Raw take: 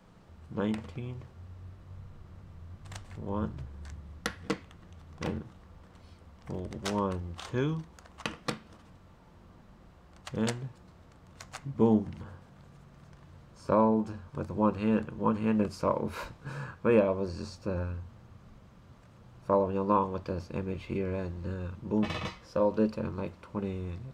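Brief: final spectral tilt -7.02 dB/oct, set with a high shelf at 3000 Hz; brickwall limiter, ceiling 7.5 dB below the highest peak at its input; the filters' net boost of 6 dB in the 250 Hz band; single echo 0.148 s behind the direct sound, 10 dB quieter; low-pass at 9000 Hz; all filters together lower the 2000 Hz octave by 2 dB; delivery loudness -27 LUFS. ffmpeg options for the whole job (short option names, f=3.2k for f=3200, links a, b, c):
-af "lowpass=9k,equalizer=f=250:t=o:g=7.5,equalizer=f=2k:t=o:g=-4,highshelf=f=3k:g=3,alimiter=limit=-15dB:level=0:latency=1,aecho=1:1:148:0.316,volume=2.5dB"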